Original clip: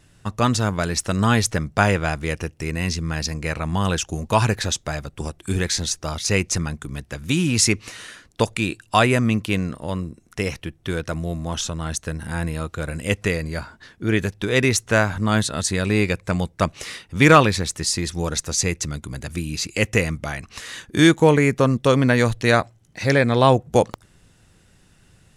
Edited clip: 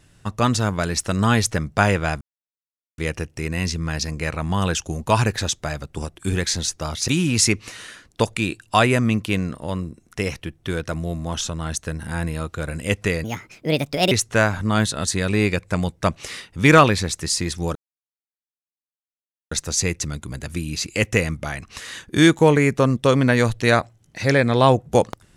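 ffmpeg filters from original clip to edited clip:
-filter_complex "[0:a]asplit=6[s0][s1][s2][s3][s4][s5];[s0]atrim=end=2.21,asetpts=PTS-STARTPTS,afade=t=out:st=2.206:d=0.004:c=hsin,apad=pad_dur=0.77[s6];[s1]atrim=start=2.21:end=6.312,asetpts=PTS-STARTPTS,afade=t=in:d=0.004:c=hsin[s7];[s2]atrim=start=7.278:end=13.444[s8];[s3]atrim=start=13.44:end=14.68,asetpts=PTS-STARTPTS,asetrate=62622,aresample=44100[s9];[s4]atrim=start=14.676:end=18.32,asetpts=PTS-STARTPTS,afade=t=out:st=3.64:d=0.004:c=hsin,apad=pad_dur=1.76[s10];[s5]atrim=start=18.32,asetpts=PTS-STARTPTS,afade=t=in:d=0.004:c=hsin[s11];[s6][s7]concat=n=2:v=0:a=1[s12];[s12][s8]acrossfade=d=0.004:c1=hsin:c2=hsin[s13];[s13][s9]acrossfade=d=0.004:c1=hsin:c2=hsin[s14];[s10][s11]concat=n=2:v=0:a=1[s15];[s14][s15]acrossfade=d=0.004:c1=hsin:c2=hsin"

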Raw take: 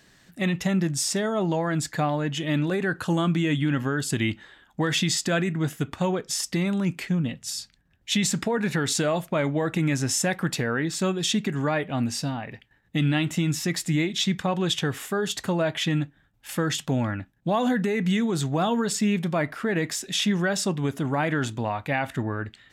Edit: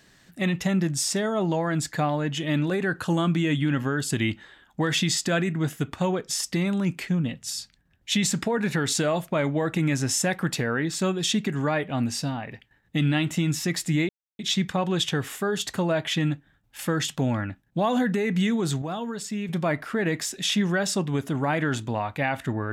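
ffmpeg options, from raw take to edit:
-filter_complex "[0:a]asplit=4[s0][s1][s2][s3];[s0]atrim=end=14.09,asetpts=PTS-STARTPTS,afade=t=out:st=14.086:d=0.004:c=hsin,apad=pad_dur=0.3[s4];[s1]atrim=start=14.09:end=18.522,asetpts=PTS-STARTPTS,afade=t=in:d=0.004:c=hsin[s5];[s2]atrim=start=18.518:end=19.192,asetpts=PTS-STARTPTS,volume=0.422[s6];[s3]atrim=start=19.188[s7];[s4][s5]concat=n=2:v=0:a=1[s8];[s8][s6]acrossfade=d=0.004:c1=hsin:c2=hsin[s9];[s9][s7]acrossfade=d=0.004:c1=hsin:c2=hsin"

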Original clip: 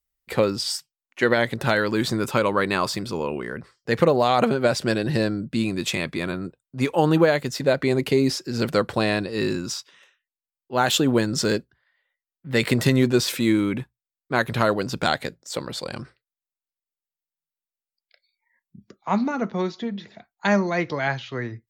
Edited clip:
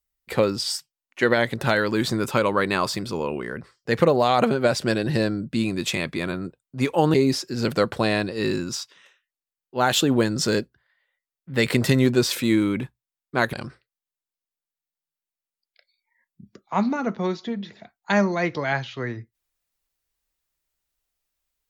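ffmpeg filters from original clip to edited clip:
-filter_complex "[0:a]asplit=3[s0][s1][s2];[s0]atrim=end=7.142[s3];[s1]atrim=start=8.108:end=14.502[s4];[s2]atrim=start=15.878[s5];[s3][s4]acrossfade=d=0.004:c1=hsin:c2=hsin[s6];[s6][s5]acrossfade=d=0.004:c1=hsin:c2=hsin"

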